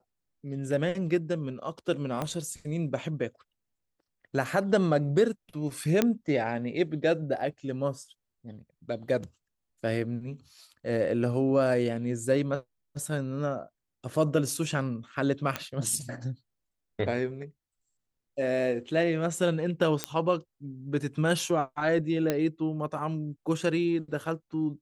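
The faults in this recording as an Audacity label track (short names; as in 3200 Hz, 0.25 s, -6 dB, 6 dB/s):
2.220000	2.220000	pop -17 dBFS
6.020000	6.020000	pop -9 dBFS
15.560000	15.560000	pop -14 dBFS
20.040000	20.040000	pop -10 dBFS
22.300000	22.300000	pop -12 dBFS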